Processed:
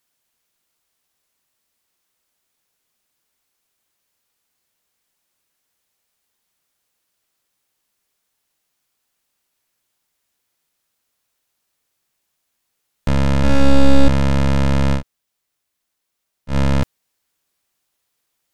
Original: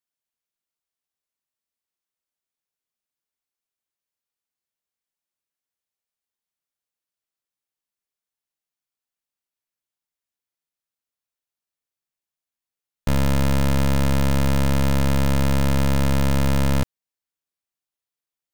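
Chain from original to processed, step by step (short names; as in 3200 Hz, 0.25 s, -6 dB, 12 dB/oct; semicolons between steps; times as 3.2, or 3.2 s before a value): sine folder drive 10 dB, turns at -17 dBFS; 13.38–14.08 flutter echo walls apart 9.4 m, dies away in 1.5 s; 14.98–16.52 room tone, crossfade 0.10 s; gain +3 dB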